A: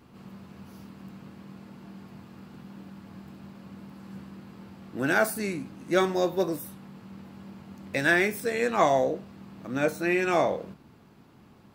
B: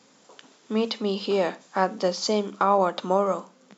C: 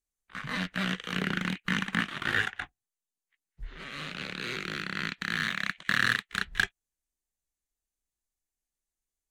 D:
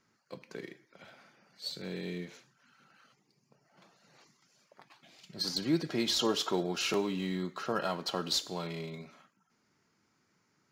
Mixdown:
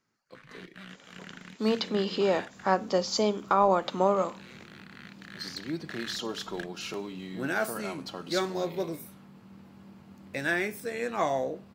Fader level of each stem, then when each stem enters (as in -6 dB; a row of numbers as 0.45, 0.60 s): -6.0, -2.0, -16.0, -5.5 dB; 2.40, 0.90, 0.00, 0.00 s